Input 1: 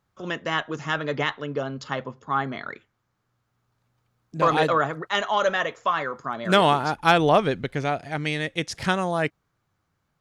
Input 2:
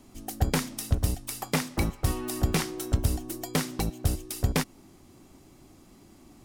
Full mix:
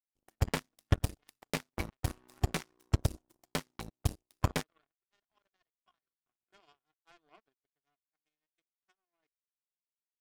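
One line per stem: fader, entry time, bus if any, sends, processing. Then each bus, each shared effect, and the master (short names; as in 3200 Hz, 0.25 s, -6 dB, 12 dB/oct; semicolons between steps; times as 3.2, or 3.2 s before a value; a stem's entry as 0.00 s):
-18.5 dB, 0.00 s, no send, comb 2.8 ms, depth 93%; small resonant body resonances 210/3300 Hz, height 7 dB, ringing for 65 ms
+1.5 dB, 0.00 s, no send, dry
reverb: off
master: high shelf 8000 Hz -8.5 dB; power-law curve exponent 3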